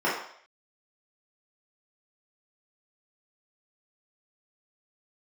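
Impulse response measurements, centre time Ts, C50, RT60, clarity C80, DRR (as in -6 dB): 46 ms, 3.5 dB, 0.60 s, 7.0 dB, -8.5 dB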